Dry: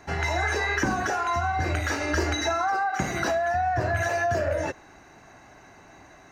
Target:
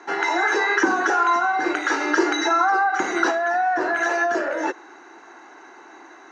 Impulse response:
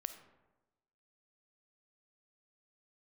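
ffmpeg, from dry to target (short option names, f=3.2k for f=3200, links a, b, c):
-af "highpass=f=310:w=0.5412,highpass=f=310:w=1.3066,equalizer=f=340:t=q:w=4:g=8,equalizer=f=610:t=q:w=4:g=-8,equalizer=f=920:t=q:w=4:g=5,equalizer=f=1.4k:t=q:w=4:g=5,equalizer=f=2.5k:t=q:w=4:g=-4,equalizer=f=4.9k:t=q:w=4:g=-5,lowpass=f=6.5k:w=0.5412,lowpass=f=6.5k:w=1.3066,volume=5dB"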